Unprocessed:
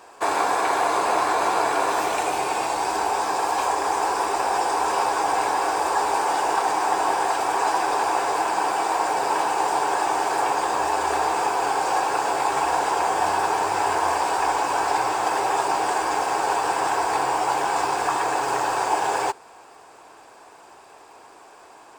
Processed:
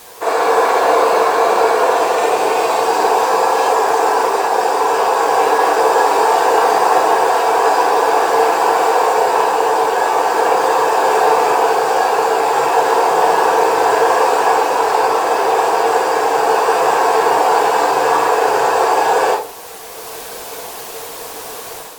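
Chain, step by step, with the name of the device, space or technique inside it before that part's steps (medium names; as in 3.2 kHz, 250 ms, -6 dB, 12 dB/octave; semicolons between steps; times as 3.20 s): filmed off a television (band-pass 200–7600 Hz; peaking EQ 480 Hz +9.5 dB 0.37 oct; reverberation RT60 0.40 s, pre-delay 35 ms, DRR -3.5 dB; white noise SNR 23 dB; level rider gain up to 8.5 dB; AAC 96 kbps 44.1 kHz)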